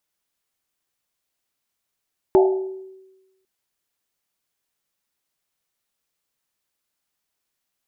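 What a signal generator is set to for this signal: Risset drum, pitch 380 Hz, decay 1.13 s, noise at 710 Hz, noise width 110 Hz, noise 15%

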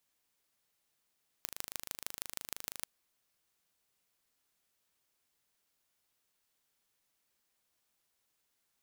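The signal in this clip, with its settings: pulse train 26/s, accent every 4, -9 dBFS 1.39 s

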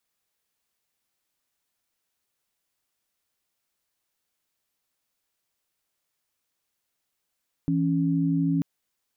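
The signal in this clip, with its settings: chord E3/C#4 sine, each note -23.5 dBFS 0.94 s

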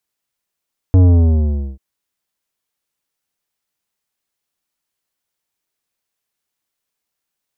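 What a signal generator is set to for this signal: sub drop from 94 Hz, over 0.84 s, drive 12 dB, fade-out 0.77 s, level -7 dB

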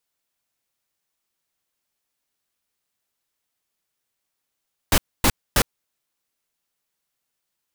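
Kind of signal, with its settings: noise bursts pink, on 0.06 s, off 0.26 s, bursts 3, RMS -16 dBFS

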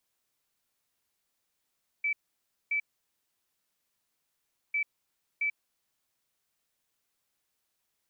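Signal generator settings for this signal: beep pattern sine 2310 Hz, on 0.09 s, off 0.58 s, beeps 2, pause 1.94 s, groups 2, -26 dBFS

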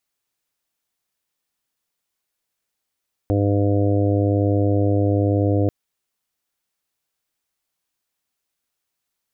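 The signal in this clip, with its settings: steady additive tone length 2.39 s, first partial 101 Hz, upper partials -14/-3/-9.5/-6/-12/-14 dB, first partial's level -18 dB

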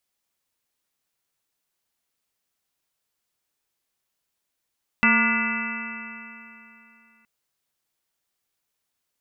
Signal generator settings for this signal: stretched partials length 2.22 s, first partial 225 Hz, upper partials -19/-18/-8/-5/-1/-14/2/-9/0.5 dB, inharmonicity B 0.0038, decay 2.97 s, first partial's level -20.5 dB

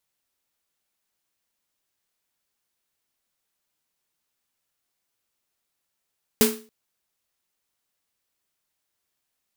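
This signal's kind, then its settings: snare drum length 0.28 s, tones 230 Hz, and 430 Hz, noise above 760 Hz, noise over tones -1.5 dB, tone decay 0.37 s, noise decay 0.33 s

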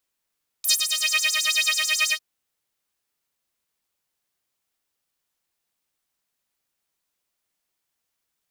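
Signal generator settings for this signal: synth patch with filter wobble D#5, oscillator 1 saw, interval +12 st, filter highpass, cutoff 2900 Hz, Q 4.2, filter envelope 1.5 oct, filter decay 0.45 s, filter sustain 30%, attack 17 ms, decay 0.15 s, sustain -9.5 dB, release 0.07 s, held 1.48 s, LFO 9.2 Hz, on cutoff 0.9 oct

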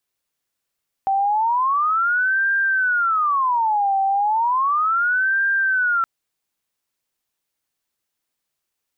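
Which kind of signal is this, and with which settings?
siren wail 778–1590 Hz 0.34/s sine -16 dBFS 4.97 s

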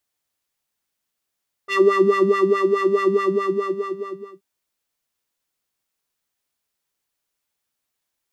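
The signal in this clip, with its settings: synth patch with filter wobble G4, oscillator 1 square, interval -12 st, oscillator 2 level -17 dB, filter bandpass, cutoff 360 Hz, Q 2.2, filter envelope 1.5 oct, attack 48 ms, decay 0.91 s, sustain -3 dB, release 1.31 s, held 1.42 s, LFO 4.7 Hz, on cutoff 1.6 oct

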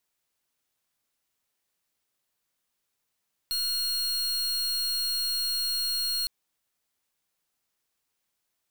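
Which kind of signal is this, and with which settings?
pulse 4270 Hz, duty 41% -28.5 dBFS 2.76 s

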